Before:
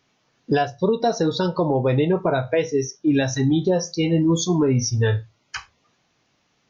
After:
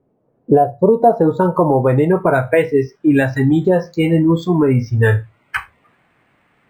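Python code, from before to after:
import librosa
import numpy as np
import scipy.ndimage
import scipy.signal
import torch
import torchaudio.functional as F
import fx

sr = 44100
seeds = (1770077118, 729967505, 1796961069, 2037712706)

p1 = fx.rider(x, sr, range_db=4, speed_s=0.5)
p2 = x + (p1 * 10.0 ** (3.0 / 20.0))
p3 = fx.filter_sweep_lowpass(p2, sr, from_hz=490.0, to_hz=2000.0, start_s=0.22, end_s=2.41, q=1.7)
p4 = np.interp(np.arange(len(p3)), np.arange(len(p3))[::4], p3[::4])
y = p4 * 10.0 ** (-2.0 / 20.0)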